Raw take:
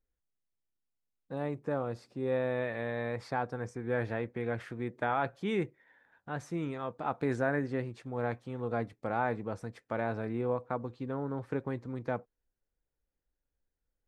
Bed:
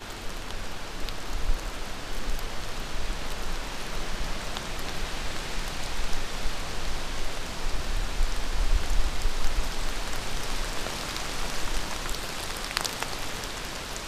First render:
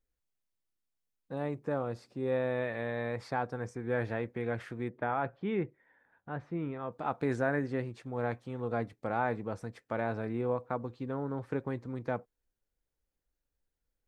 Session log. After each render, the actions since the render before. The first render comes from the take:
0:04.89–0:06.92: high-frequency loss of the air 390 metres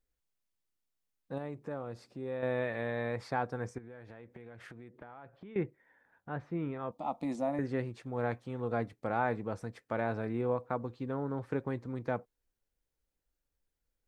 0:01.38–0:02.43: downward compressor 1.5 to 1, threshold −46 dBFS
0:03.78–0:05.56: downward compressor 16 to 1, threshold −45 dBFS
0:06.91–0:07.59: phaser with its sweep stopped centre 420 Hz, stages 6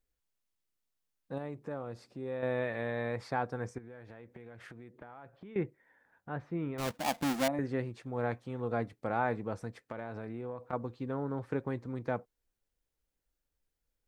0:06.78–0:07.48: each half-wave held at its own peak
0:09.86–0:10.73: downward compressor, threshold −36 dBFS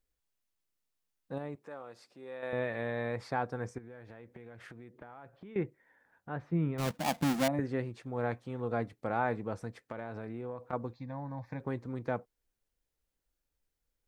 0:01.55–0:02.53: high-pass filter 850 Hz 6 dB per octave
0:06.52–0:07.60: parametric band 160 Hz +9 dB
0:10.93–0:11.60: phaser with its sweep stopped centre 2,000 Hz, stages 8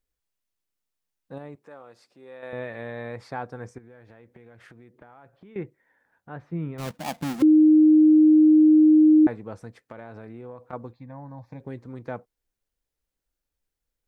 0:07.42–0:09.27: beep over 309 Hz −11.5 dBFS
0:10.91–0:11.77: parametric band 6,600 Hz → 950 Hz −11 dB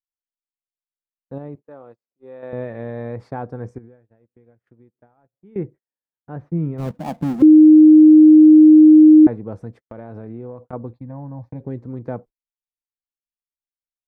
noise gate −47 dBFS, range −36 dB
tilt shelving filter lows +9 dB, about 1,100 Hz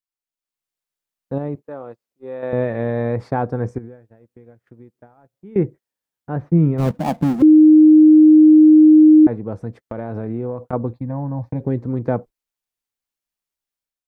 automatic gain control gain up to 8 dB
brickwall limiter −5 dBFS, peak gain reduction 4 dB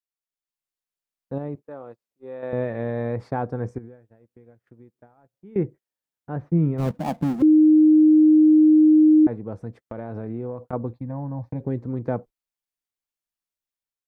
level −5.5 dB

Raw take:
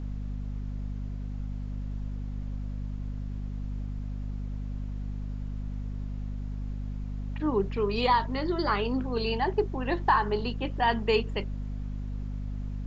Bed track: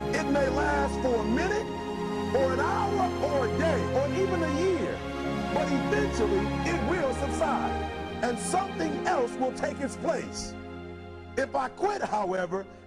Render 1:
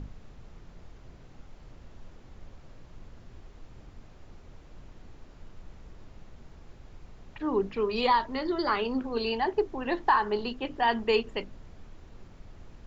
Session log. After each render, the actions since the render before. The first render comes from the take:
mains-hum notches 50/100/150/200/250/300 Hz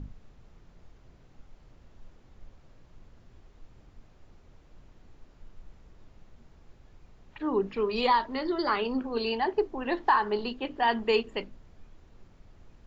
noise reduction from a noise print 6 dB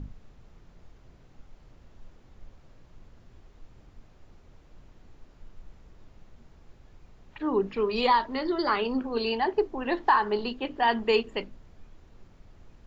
level +1.5 dB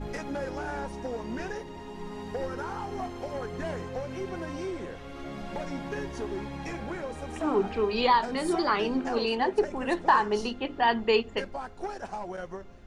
mix in bed track −8.5 dB

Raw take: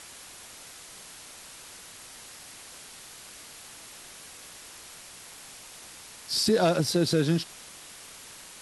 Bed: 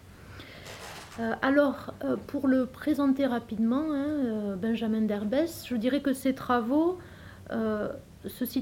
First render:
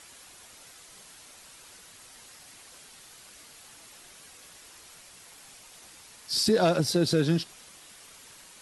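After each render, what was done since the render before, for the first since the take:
broadband denoise 6 dB, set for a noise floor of −47 dBFS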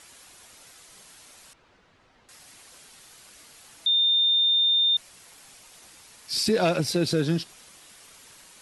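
0:01.53–0:02.29: head-to-tape spacing loss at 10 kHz 35 dB
0:03.86–0:04.97: beep over 3,620 Hz −18 dBFS
0:06.28–0:07.12: parametric band 2,400 Hz +8.5 dB 0.44 octaves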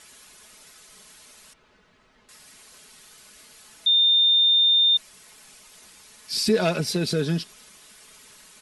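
parametric band 760 Hz −4 dB 0.38 octaves
comb filter 4.7 ms, depth 45%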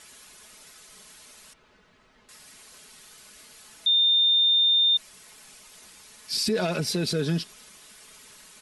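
brickwall limiter −17 dBFS, peak gain reduction 8 dB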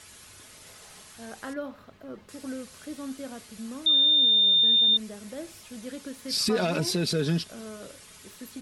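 mix in bed −12 dB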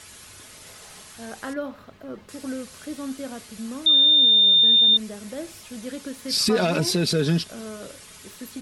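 level +4.5 dB

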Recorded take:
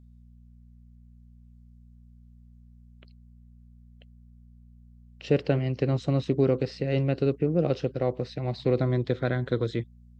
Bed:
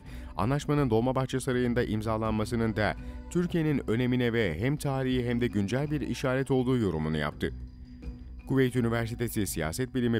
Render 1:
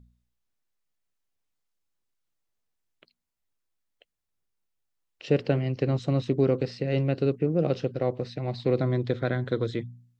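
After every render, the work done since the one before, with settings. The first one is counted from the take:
hum removal 60 Hz, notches 4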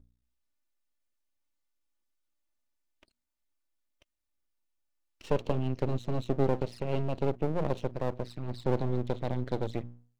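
flanger swept by the level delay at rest 3.4 ms, full sweep at −24 dBFS
half-wave rectification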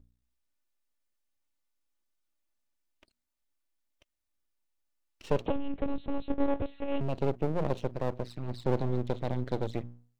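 0:05.46–0:07.01: one-pitch LPC vocoder at 8 kHz 280 Hz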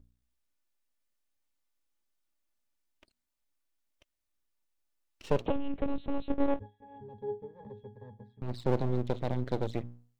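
0:06.59–0:08.42: resonances in every octave G#, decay 0.23 s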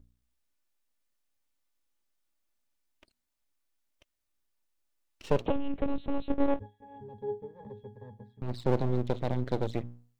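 level +1.5 dB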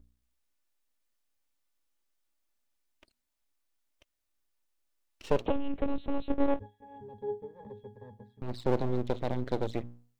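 parametric band 140 Hz −5 dB 0.83 octaves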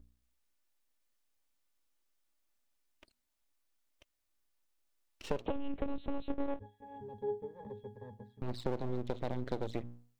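downward compressor 4 to 1, threshold −31 dBFS, peak gain reduction 10.5 dB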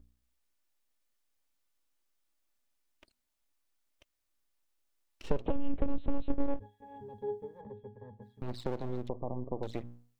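0:05.23–0:06.61: spectral tilt −2 dB per octave
0:07.61–0:08.22: high-frequency loss of the air 360 metres
0:09.09–0:09.63: linear-phase brick-wall low-pass 1,200 Hz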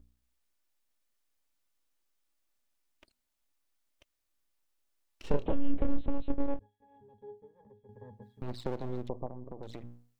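0:05.28–0:06.03: double-tracking delay 28 ms −4 dB
0:06.59–0:07.89: clip gain −11.5 dB
0:09.26–0:09.82: downward compressor 4 to 1, threshold −38 dBFS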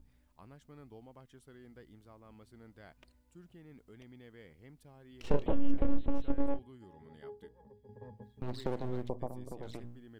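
mix in bed −27.5 dB

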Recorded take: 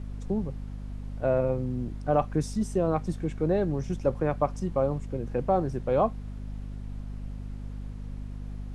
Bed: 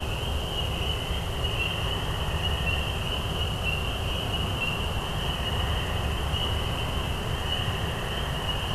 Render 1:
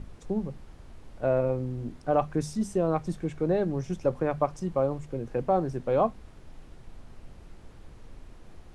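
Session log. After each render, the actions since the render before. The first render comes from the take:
mains-hum notches 50/100/150/200/250 Hz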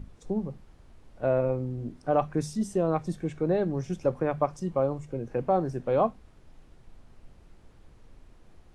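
noise reduction from a noise print 6 dB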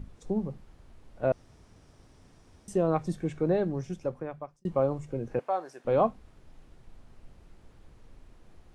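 0:01.32–0:02.68: fill with room tone
0:03.48–0:04.65: fade out
0:05.39–0:05.85: high-pass filter 770 Hz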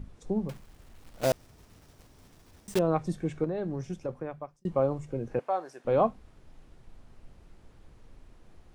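0:00.49–0:02.80: one scale factor per block 3 bits
0:03.44–0:04.09: downward compressor, threshold −28 dBFS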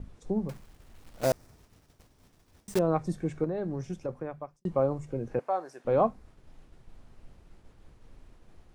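dynamic equaliser 3,100 Hz, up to −6 dB, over −58 dBFS, Q 2
downward expander −50 dBFS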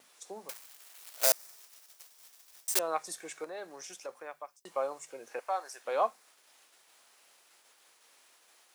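high-pass filter 550 Hz 12 dB per octave
spectral tilt +4.5 dB per octave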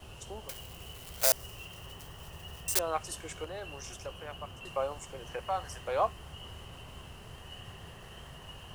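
mix in bed −19 dB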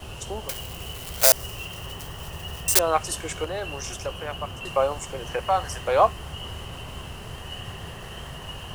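level +10.5 dB
brickwall limiter −1 dBFS, peak gain reduction 2 dB

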